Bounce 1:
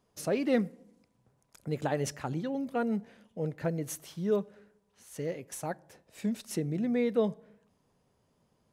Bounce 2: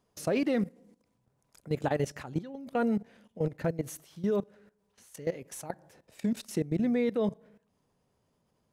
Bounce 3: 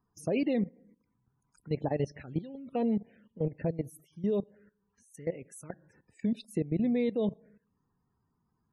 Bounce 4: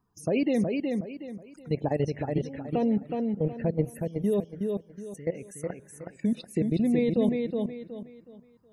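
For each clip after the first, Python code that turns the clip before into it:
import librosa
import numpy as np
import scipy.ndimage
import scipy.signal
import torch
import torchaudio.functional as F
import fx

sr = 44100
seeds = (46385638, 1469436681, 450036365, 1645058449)

y1 = fx.level_steps(x, sr, step_db=16)
y1 = y1 * 10.0 ** (5.5 / 20.0)
y2 = fx.spec_topn(y1, sr, count=64)
y2 = fx.env_phaser(y2, sr, low_hz=570.0, high_hz=1400.0, full_db=-29.5)
y3 = fx.echo_feedback(y2, sr, ms=369, feedback_pct=31, wet_db=-4.0)
y3 = y3 * 10.0 ** (3.5 / 20.0)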